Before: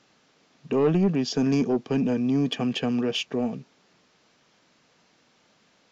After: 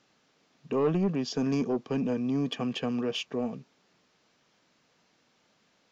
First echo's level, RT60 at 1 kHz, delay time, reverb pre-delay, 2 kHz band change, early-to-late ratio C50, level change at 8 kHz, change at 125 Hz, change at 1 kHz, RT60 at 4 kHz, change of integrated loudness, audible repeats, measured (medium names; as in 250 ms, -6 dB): no echo, no reverb, no echo, no reverb, -5.5 dB, no reverb, no reading, -5.5 dB, -3.0 dB, no reverb, -5.0 dB, no echo